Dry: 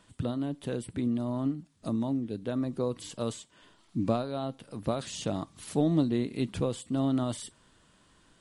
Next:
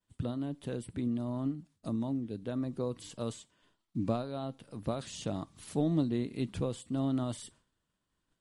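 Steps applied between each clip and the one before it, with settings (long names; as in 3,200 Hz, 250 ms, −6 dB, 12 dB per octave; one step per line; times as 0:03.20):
downward expander −51 dBFS
low-shelf EQ 170 Hz +4 dB
level −5 dB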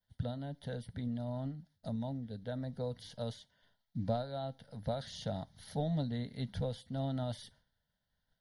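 phaser with its sweep stopped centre 1,700 Hz, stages 8
level +1 dB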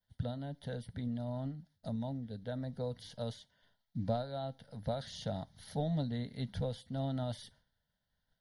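no processing that can be heard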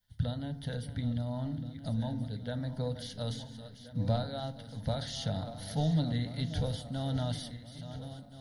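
feedback delay that plays each chunk backwards 688 ms, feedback 63%, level −11.5 dB
parametric band 490 Hz −8.5 dB 2.8 octaves
feedback delay network reverb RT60 0.76 s, low-frequency decay 1.55×, high-frequency decay 0.35×, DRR 10.5 dB
level +8 dB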